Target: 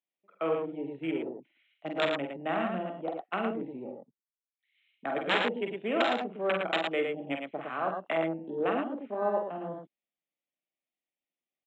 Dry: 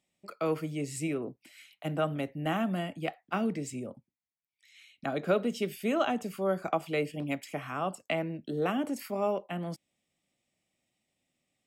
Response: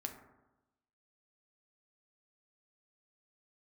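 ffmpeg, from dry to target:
-af "aresample=8000,aeval=exprs='(mod(8.91*val(0)+1,2)-1)/8.91':c=same,aresample=44100,afwtdn=0.01,highpass=300,aecho=1:1:43|49|95|111:0.398|0.473|0.15|0.596"

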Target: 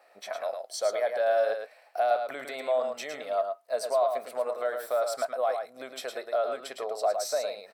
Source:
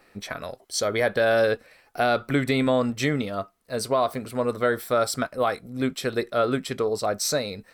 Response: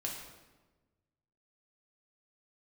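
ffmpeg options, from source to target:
-filter_complex "[0:a]alimiter=limit=-19.5dB:level=0:latency=1:release=143,highpass=f=650:t=q:w=4.9,asplit=2[a][b];[b]aecho=0:1:109:0.501[c];[a][c]amix=inputs=2:normalize=0,volume=-6.5dB"

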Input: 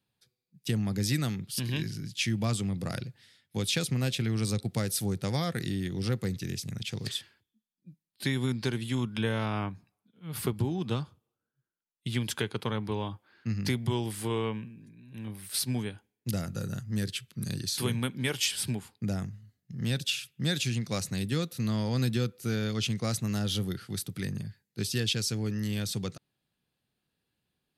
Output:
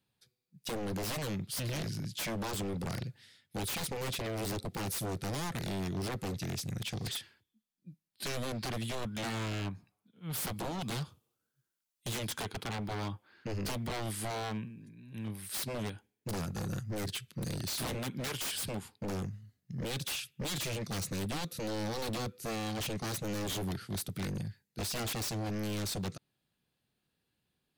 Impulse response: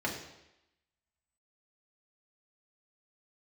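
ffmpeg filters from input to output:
-filter_complex "[0:a]asettb=1/sr,asplit=3[a][b][c];[a]atrim=end=10.314[d];[b]atrim=start=10.31:end=12.25,asetpts=PTS-STARTPTS,afade=t=in:d=0.004:c=qsin,afade=t=out:st=1.936:d=0.004:c=qsin,highshelf=f=2.7k:g=8.5[e];[c]atrim=start=12.246[f];[d][e]acrossfade=d=0.004:c1=hsin:c2=qsin[g];[g][f]acrossfade=d=0.004:c1=qsin:c2=hsin,aeval=exprs='0.0282*(abs(mod(val(0)/0.0282+3,4)-2)-1)':c=same"

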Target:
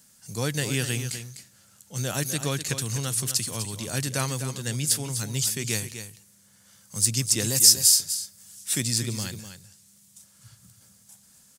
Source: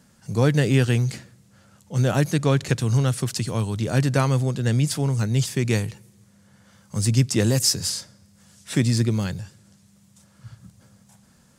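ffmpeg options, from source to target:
-filter_complex "[0:a]aecho=1:1:251:0.316,crystalizer=i=6.5:c=0,asettb=1/sr,asplit=3[a][b][c];[a]atrim=end=7.734[d];[b]atrim=start=7.73:end=8.83,asetpts=PTS-STARTPTS,afade=t=in:d=0.004:c=qsin,afade=t=out:st=1.096:d=0.004:c=qsin,highshelf=f=10k:g=7[e];[c]atrim=start=8.826[f];[d][e]acrossfade=d=0.004:c1=hsin:c2=qsin[g];[g][f]acrossfade=d=0.004:c1=qsin:c2=hsin,volume=-10.5dB"

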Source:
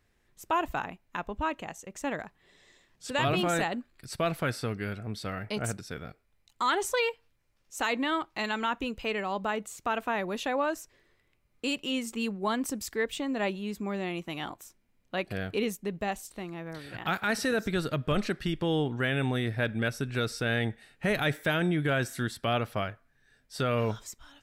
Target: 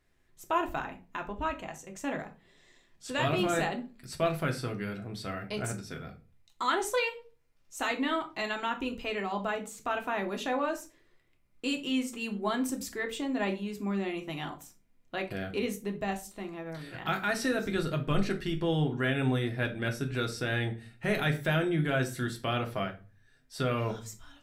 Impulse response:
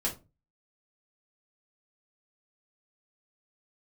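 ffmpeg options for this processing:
-filter_complex "[0:a]asplit=2[a][b];[1:a]atrim=start_sample=2205,asetrate=33516,aresample=44100[c];[b][c]afir=irnorm=-1:irlink=0,volume=-6.5dB[d];[a][d]amix=inputs=2:normalize=0,volume=-6.5dB"

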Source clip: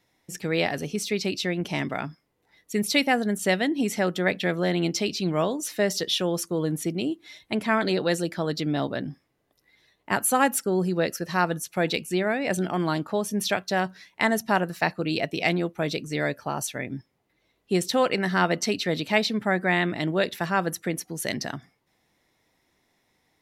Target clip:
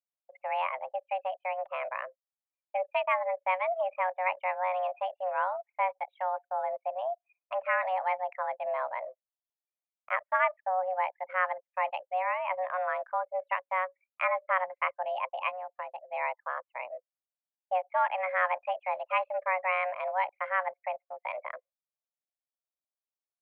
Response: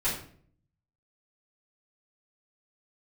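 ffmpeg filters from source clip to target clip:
-filter_complex "[0:a]asplit=3[a][b][c];[a]afade=t=out:st=15.48:d=0.02[d];[b]acompressor=threshold=-29dB:ratio=6,afade=t=in:st=15.48:d=0.02,afade=t=out:st=16.09:d=0.02[e];[c]afade=t=in:st=16.09:d=0.02[f];[d][e][f]amix=inputs=3:normalize=0,highpass=f=170:t=q:w=0.5412,highpass=f=170:t=q:w=1.307,lowpass=f=2.1k:t=q:w=0.5176,lowpass=f=2.1k:t=q:w=0.7071,lowpass=f=2.1k:t=q:w=1.932,afreqshift=370,anlmdn=2.51,volume=-5dB"

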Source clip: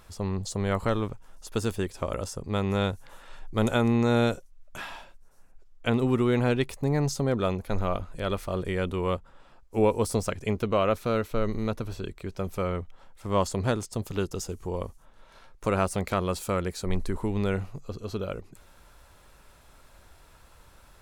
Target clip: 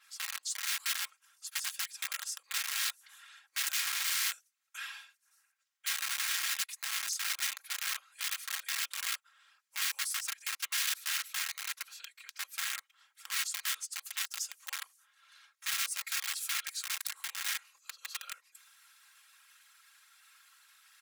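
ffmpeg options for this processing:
-filter_complex "[0:a]afftfilt=real='hypot(re,im)*cos(2*PI*random(0))':imag='hypot(re,im)*sin(2*PI*random(1))':win_size=512:overlap=0.75,asplit=2[a][b];[b]acompressor=threshold=-39dB:ratio=8,volume=-1.5dB[c];[a][c]amix=inputs=2:normalize=0,aeval=exprs='(mod(21.1*val(0)+1,2)-1)/21.1':c=same,areverse,acompressor=mode=upward:threshold=-50dB:ratio=2.5,areverse,highpass=f=1.5k:w=0.5412,highpass=f=1.5k:w=1.3066,aecho=1:1:3.7:0.5,adynamicequalizer=threshold=0.00501:dfrequency=4600:dqfactor=0.7:tfrequency=4600:tqfactor=0.7:attack=5:release=100:ratio=0.375:range=2:mode=boostabove:tftype=highshelf,volume=-1dB"

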